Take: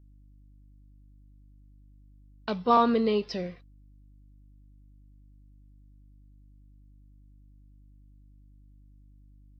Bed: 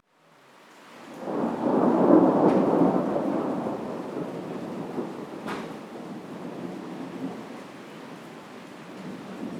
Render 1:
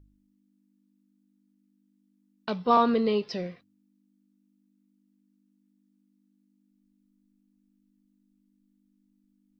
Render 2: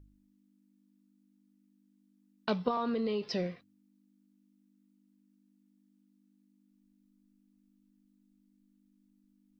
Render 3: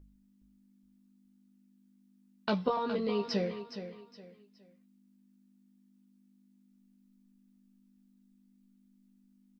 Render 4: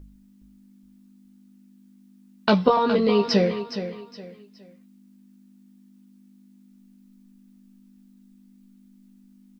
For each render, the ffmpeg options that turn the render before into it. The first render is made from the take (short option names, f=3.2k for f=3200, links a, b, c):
-af "bandreject=f=50:t=h:w=4,bandreject=f=100:t=h:w=4,bandreject=f=150:t=h:w=4"
-filter_complex "[0:a]asettb=1/sr,asplit=3[a][b][c];[a]atrim=end=2.684[d];[b]atrim=start=2.68:end=3.35,asetpts=PTS-STARTPTS,afade=t=in:d=0.004:c=qsin,afade=t=out:st=0.666:d=0.004:c=qsin,acompressor=threshold=-29dB:ratio=6:attack=3.2:release=140:knee=1:detection=peak[e];[c]atrim=start=3.346[f];[d][e]acrossfade=d=0.004:c1=hsin:c2=qsin[g];[g][f]acrossfade=d=0.004:c1=qsin:c2=hsin"
-filter_complex "[0:a]asplit=2[a][b];[b]adelay=15,volume=-5dB[c];[a][c]amix=inputs=2:normalize=0,aecho=1:1:416|832|1248:0.299|0.0925|0.0287"
-af "volume=12dB"